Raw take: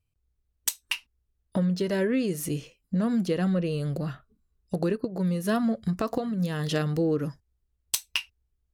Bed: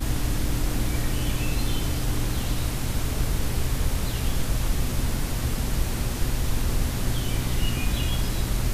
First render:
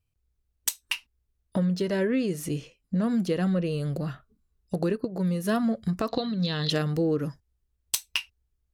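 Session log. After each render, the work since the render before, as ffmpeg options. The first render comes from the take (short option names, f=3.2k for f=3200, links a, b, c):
-filter_complex "[0:a]asettb=1/sr,asplit=3[a][b][c];[a]atrim=end=1.864[d];[b]atrim=start=1.86:end=3.04,asetpts=PTS-STARTPTS,afade=t=in:d=0.004:c=qsin,afade=t=out:st=1.176:d=0.004:c=qsin,highshelf=f=11k:g=-9.5[e];[c]atrim=start=3.036[f];[d][e]acrossfade=d=0.004:c1=hsin:c2=qsin[g];[g][f]acrossfade=d=0.004:c1=qsin:c2=hsin,asettb=1/sr,asplit=3[h][i][j];[h]atrim=end=6.084[k];[i]atrim=start=6.08:end=6.7,asetpts=PTS-STARTPTS,afade=t=in:d=0.004:c=qsin,afade=t=out:st=0.616:d=0.004:c=qsin,lowpass=f=4k:t=q:w=7.8[l];[j]atrim=start=6.696[m];[k][l]acrossfade=d=0.004:c1=hsin:c2=qsin[n];[n][m]acrossfade=d=0.004:c1=qsin:c2=hsin"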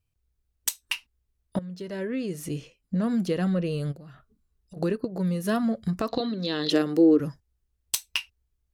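-filter_complex "[0:a]asplit=3[a][b][c];[a]afade=t=out:st=3.91:d=0.02[d];[b]acompressor=threshold=-42dB:ratio=12:attack=3.2:release=140:knee=1:detection=peak,afade=t=in:st=3.91:d=0.02,afade=t=out:st=4.76:d=0.02[e];[c]afade=t=in:st=4.76:d=0.02[f];[d][e][f]amix=inputs=3:normalize=0,asettb=1/sr,asplit=3[g][h][i];[g]atrim=end=6.204[j];[h]atrim=start=6.2:end=7.2,asetpts=PTS-STARTPTS,afade=t=in:d=0.004:c=qsin,afade=t=out:st=0.996:d=0.004:c=qsin,highpass=f=310:t=q:w=3.1[k];[i]atrim=start=7.196[l];[j][k]acrossfade=d=0.004:c1=hsin:c2=qsin[m];[m][l]acrossfade=d=0.004:c1=qsin:c2=hsin,asplit=2[n][o];[n]atrim=end=1.59,asetpts=PTS-STARTPTS,afade=t=out:st=1.586:d=0.004:c=hsin:silence=0.158489[p];[o]atrim=start=1.59,asetpts=PTS-STARTPTS,afade=t=in:d=1.63:c=qsin:silence=0.158489[q];[p][q]concat=n=2:v=0:a=1"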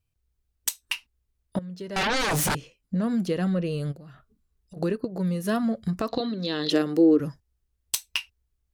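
-filter_complex "[0:a]asettb=1/sr,asplit=3[a][b][c];[a]atrim=end=1.964[d];[b]atrim=start=1.96:end=2.55,asetpts=PTS-STARTPTS,afade=t=in:d=0.004:c=qsin,afade=t=out:st=0.586:d=0.004:c=qsin,aeval=exprs='0.0841*sin(PI/2*6.31*val(0)/0.0841)':c=same[e];[c]atrim=start=2.546[f];[d][e]acrossfade=d=0.004:c1=hsin:c2=qsin[g];[g][f]acrossfade=d=0.004:c1=qsin:c2=hsin"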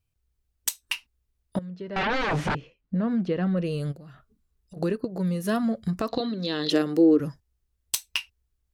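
-filter_complex "[0:a]asplit=3[a][b][c];[a]afade=t=out:st=1.69:d=0.02[d];[b]lowpass=2.7k,afade=t=in:st=1.69:d=0.02,afade=t=out:st=3.56:d=0.02[e];[c]afade=t=in:st=3.56:d=0.02[f];[d][e][f]amix=inputs=3:normalize=0"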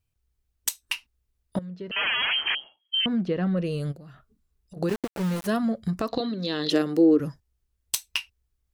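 -filter_complex "[0:a]asettb=1/sr,asplit=3[a][b][c];[a]atrim=end=1.914[d];[b]atrim=start=1.91:end=3.06,asetpts=PTS-STARTPTS,afade=t=in:d=0.004:c=qsin,afade=t=out:st=1.146:d=0.004:c=qsin,lowpass=f=2.8k:t=q:w=0.5098,lowpass=f=2.8k:t=q:w=0.6013,lowpass=f=2.8k:t=q:w=0.9,lowpass=f=2.8k:t=q:w=2.563,afreqshift=-3300[e];[c]atrim=start=3.056[f];[d][e]acrossfade=d=0.004:c1=hsin:c2=qsin[g];[g][f]acrossfade=d=0.004:c1=qsin:c2=hsin,asplit=3[h][i][j];[h]afade=t=out:st=4.88:d=0.02[k];[i]aeval=exprs='val(0)*gte(abs(val(0)),0.0335)':c=same,afade=t=in:st=4.88:d=0.02,afade=t=out:st=5.46:d=0.02[l];[j]afade=t=in:st=5.46:d=0.02[m];[k][l][m]amix=inputs=3:normalize=0"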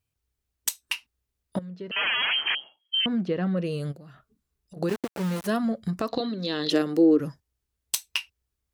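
-af "highpass=f=110:p=1"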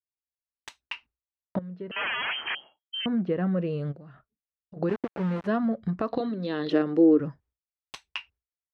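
-af "lowpass=2k,agate=range=-33dB:threshold=-52dB:ratio=3:detection=peak"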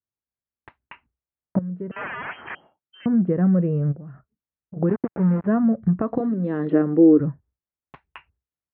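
-af "lowpass=f=1.9k:w=0.5412,lowpass=f=1.9k:w=1.3066,equalizer=f=120:w=0.42:g=10.5"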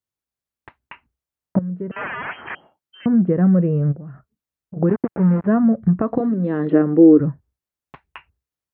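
-af "volume=3.5dB"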